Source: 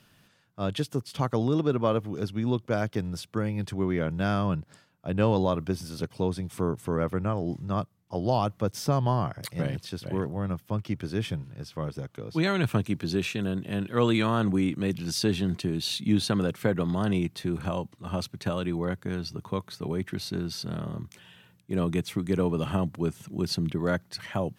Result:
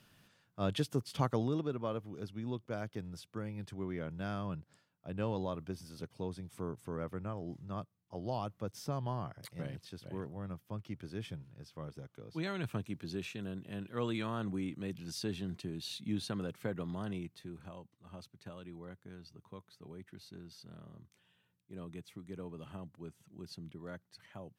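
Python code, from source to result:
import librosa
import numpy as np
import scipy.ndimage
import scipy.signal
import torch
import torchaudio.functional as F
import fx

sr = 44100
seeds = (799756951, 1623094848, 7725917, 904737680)

y = fx.gain(x, sr, db=fx.line((1.23, -4.5), (1.75, -12.5), (16.96, -12.5), (17.71, -19.5)))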